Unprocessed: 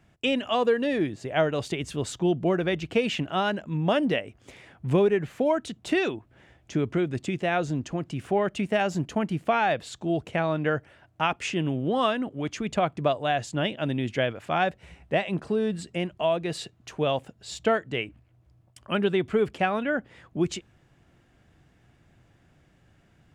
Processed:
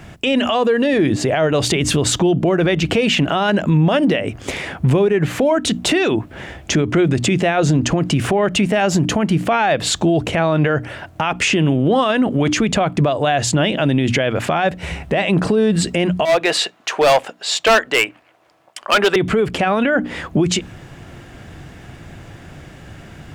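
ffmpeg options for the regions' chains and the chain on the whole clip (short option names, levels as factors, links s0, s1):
-filter_complex "[0:a]asettb=1/sr,asplit=3[s0][s1][s2];[s0]atrim=end=16.254[s3];[s1]atrim=start=16.25:end=19.16,asetpts=PTS-STARTPTS,afade=t=in:d=0.004:c=qsin,afade=t=out:st=2.906:d=0.004:c=qsin,highpass=670,highshelf=f=5200:g=-10,volume=31.6,asoftclip=hard,volume=0.0316[s4];[s2]atrim=start=19.156[s5];[s3][s4]acrossfade=d=0.004:c1=hsin:c2=qsin[s6];[s6][s5]acrossfade=d=0.004:c1=qsin:c2=hsin,bandreject=f=60:t=h:w=6,bandreject=f=120:t=h:w=6,bandreject=f=180:t=h:w=6,bandreject=f=240:t=h:w=6,bandreject=f=300:t=h:w=6,acompressor=threshold=0.0316:ratio=6,alimiter=level_in=33.5:limit=0.891:release=50:level=0:latency=1,volume=0.447"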